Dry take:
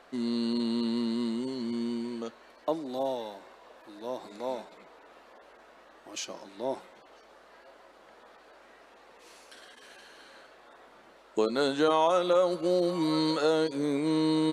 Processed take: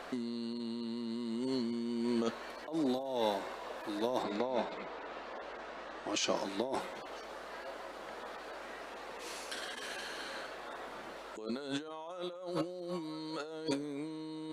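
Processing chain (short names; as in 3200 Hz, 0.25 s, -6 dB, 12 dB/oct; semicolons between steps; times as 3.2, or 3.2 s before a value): negative-ratio compressor -39 dBFS, ratio -1; 4.22–6.34 LPF 3800 Hz -> 7400 Hz 12 dB/oct; gain +1 dB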